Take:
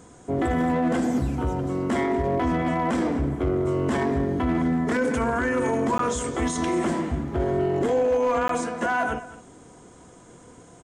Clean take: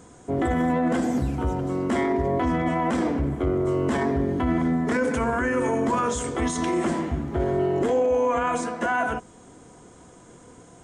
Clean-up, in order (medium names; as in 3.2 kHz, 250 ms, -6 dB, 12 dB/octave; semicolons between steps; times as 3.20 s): clip repair -17 dBFS; interpolate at 5.98/8.48 s, 13 ms; inverse comb 216 ms -16.5 dB